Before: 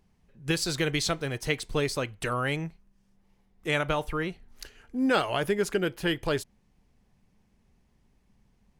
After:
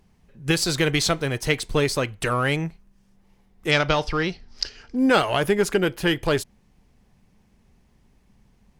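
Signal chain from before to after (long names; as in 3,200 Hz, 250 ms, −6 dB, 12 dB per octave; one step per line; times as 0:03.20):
in parallel at −8 dB: asymmetric clip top −35 dBFS
0:03.71–0:04.96: on the sum: low-pass with resonance 5,100 Hz, resonance Q 7.3
level +4 dB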